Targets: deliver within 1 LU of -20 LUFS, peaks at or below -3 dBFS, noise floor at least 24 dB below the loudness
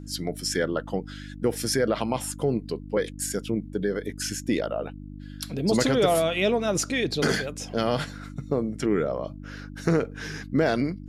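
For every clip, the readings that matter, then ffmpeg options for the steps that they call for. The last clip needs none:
hum 50 Hz; highest harmonic 300 Hz; hum level -37 dBFS; loudness -26.5 LUFS; peak level -9.0 dBFS; loudness target -20.0 LUFS
-> -af "bandreject=f=50:t=h:w=4,bandreject=f=100:t=h:w=4,bandreject=f=150:t=h:w=4,bandreject=f=200:t=h:w=4,bandreject=f=250:t=h:w=4,bandreject=f=300:t=h:w=4"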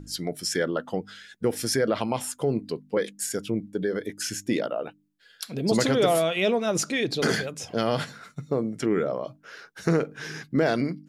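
hum not found; loudness -27.0 LUFS; peak level -9.0 dBFS; loudness target -20.0 LUFS
-> -af "volume=2.24,alimiter=limit=0.708:level=0:latency=1"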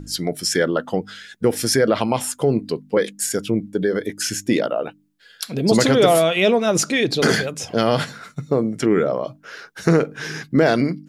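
loudness -20.0 LUFS; peak level -3.0 dBFS; noise floor -52 dBFS

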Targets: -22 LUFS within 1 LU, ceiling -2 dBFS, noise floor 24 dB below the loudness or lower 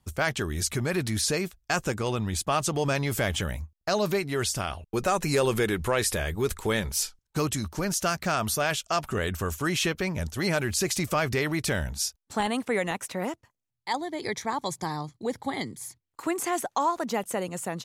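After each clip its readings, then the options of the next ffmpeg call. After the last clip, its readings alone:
loudness -28.0 LUFS; peak level -12.0 dBFS; loudness target -22.0 LUFS
-> -af "volume=2"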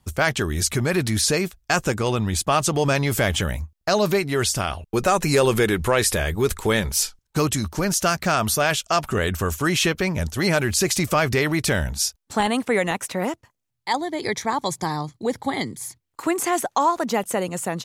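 loudness -22.0 LUFS; peak level -6.0 dBFS; noise floor -75 dBFS

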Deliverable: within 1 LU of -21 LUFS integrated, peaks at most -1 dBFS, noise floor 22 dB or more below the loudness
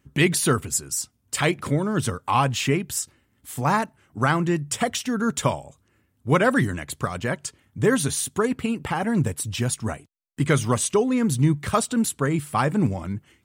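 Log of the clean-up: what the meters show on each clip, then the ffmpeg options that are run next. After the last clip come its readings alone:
loudness -23.5 LUFS; peak level -7.5 dBFS; loudness target -21.0 LUFS
-> -af "volume=1.33"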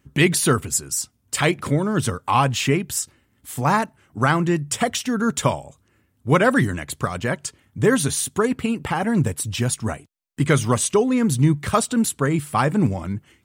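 loudness -21.0 LUFS; peak level -5.0 dBFS; noise floor -65 dBFS

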